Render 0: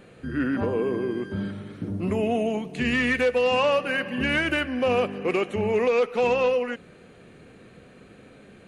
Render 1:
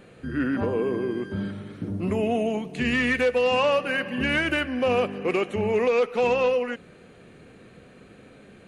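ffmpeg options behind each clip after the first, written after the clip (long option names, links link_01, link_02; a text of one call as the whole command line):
ffmpeg -i in.wav -af anull out.wav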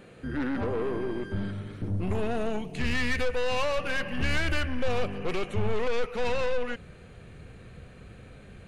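ffmpeg -i in.wav -af "aeval=exprs='(tanh(17.8*val(0)+0.25)-tanh(0.25))/17.8':channel_layout=same,asubboost=boost=7:cutoff=97" out.wav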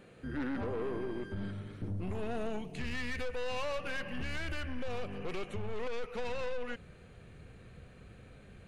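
ffmpeg -i in.wav -af "alimiter=limit=-22.5dB:level=0:latency=1:release=92,volume=-6dB" out.wav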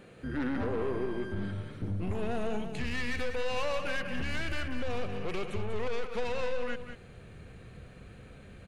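ffmpeg -i in.wav -af "aecho=1:1:193:0.355,volume=3.5dB" out.wav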